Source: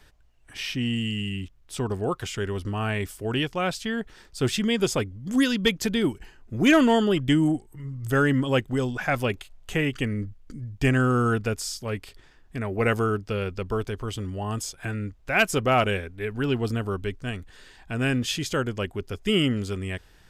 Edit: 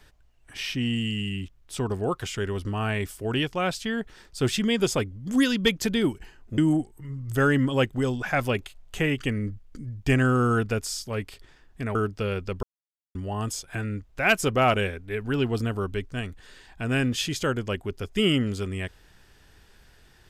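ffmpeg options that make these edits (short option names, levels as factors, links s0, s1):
-filter_complex "[0:a]asplit=5[s0][s1][s2][s3][s4];[s0]atrim=end=6.582[s5];[s1]atrim=start=7.328:end=12.702[s6];[s2]atrim=start=13.048:end=13.73,asetpts=PTS-STARTPTS,afade=t=out:st=0.678:d=0.004:c=hsin[s7];[s3]atrim=start=13.73:end=14.25,asetpts=PTS-STARTPTS,volume=0[s8];[s4]atrim=start=14.25,asetpts=PTS-STARTPTS,afade=t=in:d=0.004:c=hsin[s9];[s5][s6]acrossfade=d=0.004:c1=hsin:c2=hsin[s10];[s7][s8][s9]concat=n=3:v=0:a=1[s11];[s10][s11]acrossfade=d=0.004:c1=hsin:c2=hsin"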